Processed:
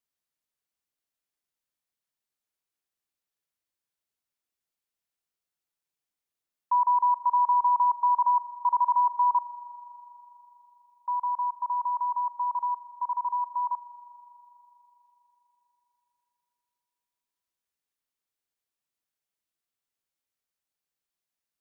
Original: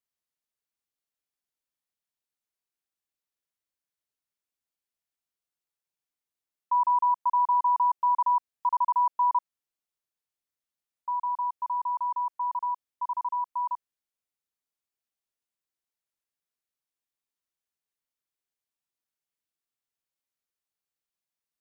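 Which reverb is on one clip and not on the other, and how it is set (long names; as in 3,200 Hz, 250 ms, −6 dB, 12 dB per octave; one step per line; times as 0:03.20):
spring reverb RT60 3.8 s, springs 40 ms, chirp 65 ms, DRR 15 dB
level +1 dB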